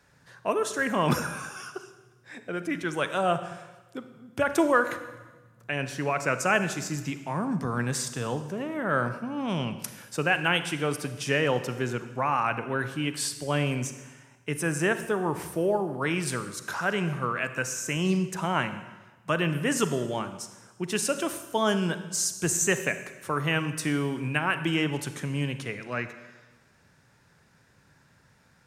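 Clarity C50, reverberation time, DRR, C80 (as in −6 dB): 11.0 dB, 1.2 s, 10.0 dB, 12.5 dB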